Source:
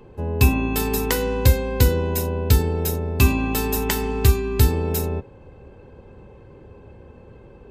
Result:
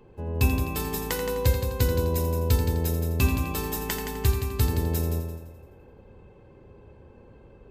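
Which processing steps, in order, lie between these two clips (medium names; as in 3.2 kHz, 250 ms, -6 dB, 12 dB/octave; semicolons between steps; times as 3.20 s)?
multi-head delay 85 ms, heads first and second, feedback 41%, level -9.5 dB; trim -7 dB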